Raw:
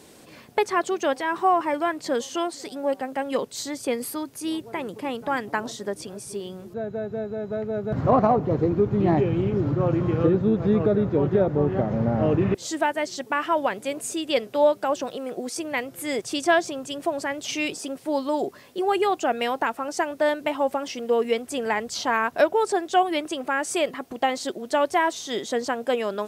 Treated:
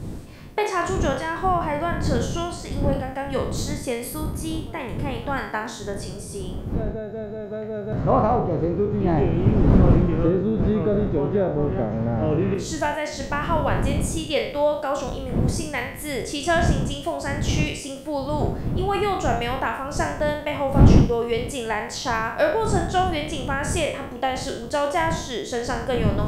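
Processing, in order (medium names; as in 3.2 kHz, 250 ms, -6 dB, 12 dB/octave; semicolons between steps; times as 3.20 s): spectral sustain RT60 0.58 s; wind noise 180 Hz -23 dBFS; trim -2.5 dB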